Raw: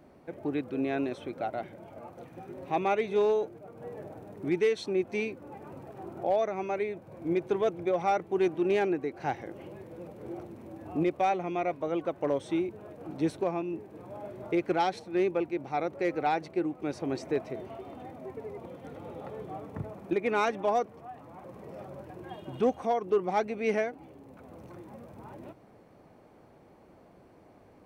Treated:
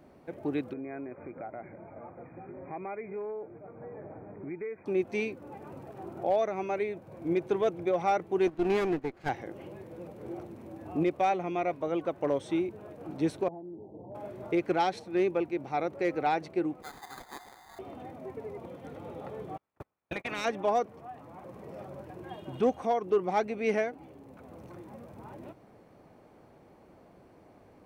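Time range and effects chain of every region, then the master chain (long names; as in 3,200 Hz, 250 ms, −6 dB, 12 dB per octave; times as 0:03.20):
0:00.73–0:04.86: downward compressor 2.5 to 1, threshold −40 dBFS + linear-phase brick-wall low-pass 2,500 Hz
0:08.47–0:09.29: lower of the sound and its delayed copy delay 0.43 ms + noise gate −35 dBFS, range −9 dB
0:13.48–0:14.15: Butterworth low-pass 920 Hz 72 dB per octave + downward compressor 12 to 1, threshold −39 dBFS
0:16.82–0:17.79: linear-phase brick-wall high-pass 700 Hz + sample-rate reduction 2,800 Hz
0:19.56–0:20.44: ceiling on every frequency bin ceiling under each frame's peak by 23 dB + noise gate −33 dBFS, range −43 dB + downward compressor 3 to 1, threshold −33 dBFS
whole clip: no processing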